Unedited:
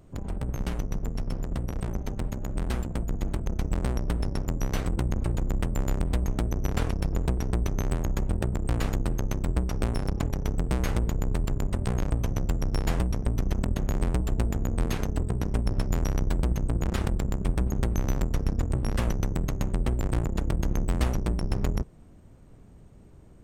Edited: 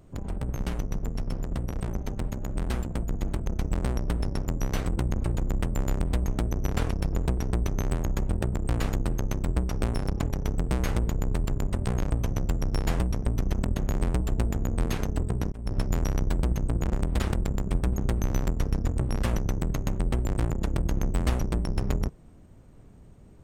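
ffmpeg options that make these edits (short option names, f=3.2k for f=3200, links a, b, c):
-filter_complex "[0:a]asplit=4[a][b][c][d];[a]atrim=end=15.52,asetpts=PTS-STARTPTS,afade=t=out:st=15.516:d=0.004:c=hsin[e];[b]atrim=start=15.52:end=16.932,asetpts=PTS-STARTPTS,afade=t=in:d=0.25[f];[c]atrim=start=5.908:end=6.172[g];[d]atrim=start=16.928[h];[e][f]concat=n=2:v=0:a=1[i];[i][g]acrossfade=d=0.004:c1=hsin:c2=hsin[j];[j][h]acrossfade=d=0.004:c1=hsin:c2=hsin"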